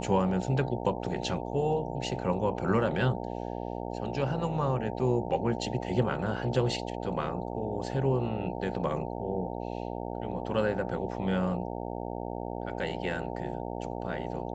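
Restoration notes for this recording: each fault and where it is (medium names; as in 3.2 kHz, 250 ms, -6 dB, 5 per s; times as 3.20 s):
buzz 60 Hz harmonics 15 -36 dBFS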